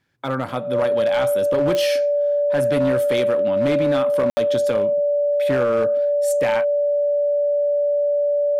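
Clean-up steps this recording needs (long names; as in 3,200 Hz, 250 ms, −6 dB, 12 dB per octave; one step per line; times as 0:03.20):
clipped peaks rebuilt −13.5 dBFS
click removal
notch filter 580 Hz, Q 30
ambience match 0:04.30–0:04.37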